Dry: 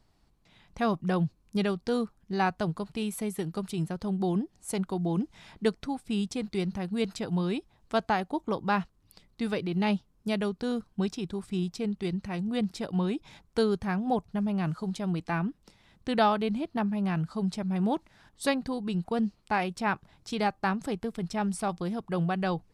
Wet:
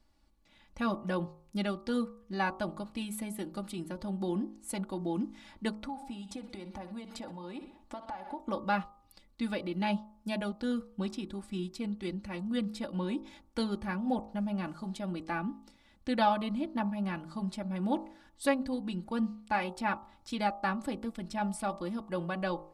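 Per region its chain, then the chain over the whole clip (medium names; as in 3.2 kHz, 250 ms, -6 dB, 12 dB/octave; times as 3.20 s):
5.80–8.40 s: peaking EQ 810 Hz +11 dB 0.97 oct + feedback delay 61 ms, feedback 48%, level -17 dB + compression 12:1, threshold -34 dBFS
whole clip: comb 3.5 ms, depth 82%; de-hum 53.4 Hz, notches 25; dynamic bell 5.9 kHz, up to -5 dB, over -59 dBFS, Q 3.1; trim -5 dB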